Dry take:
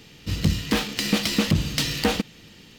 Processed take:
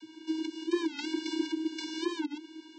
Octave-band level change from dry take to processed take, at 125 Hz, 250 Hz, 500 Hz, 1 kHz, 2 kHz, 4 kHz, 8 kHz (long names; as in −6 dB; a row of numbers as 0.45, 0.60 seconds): below −40 dB, −6.0 dB, −6.5 dB, −11.5 dB, −13.0 dB, −13.5 dB, −17.0 dB